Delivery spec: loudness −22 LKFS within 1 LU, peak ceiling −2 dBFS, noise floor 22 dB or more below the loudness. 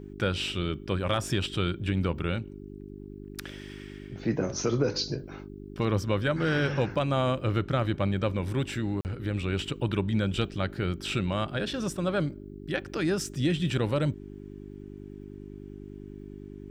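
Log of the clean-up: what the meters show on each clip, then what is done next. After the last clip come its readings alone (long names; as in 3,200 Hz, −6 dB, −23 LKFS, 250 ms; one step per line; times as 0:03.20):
number of dropouts 1; longest dropout 39 ms; mains hum 50 Hz; hum harmonics up to 400 Hz; level of the hum −41 dBFS; integrated loudness −29.5 LKFS; sample peak −14.0 dBFS; target loudness −22.0 LKFS
→ repair the gap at 0:09.01, 39 ms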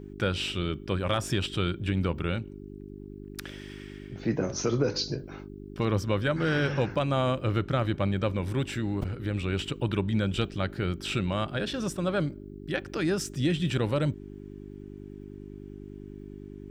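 number of dropouts 0; mains hum 50 Hz; hum harmonics up to 400 Hz; level of the hum −41 dBFS
→ hum removal 50 Hz, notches 8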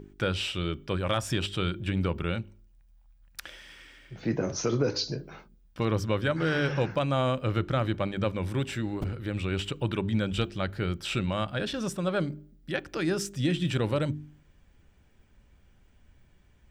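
mains hum none found; integrated loudness −30.0 LKFS; sample peak −14.0 dBFS; target loudness −22.0 LKFS
→ level +8 dB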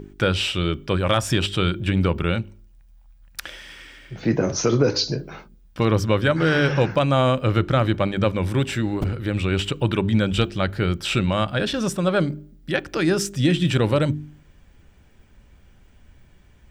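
integrated loudness −22.0 LKFS; sample peak −6.0 dBFS; background noise floor −53 dBFS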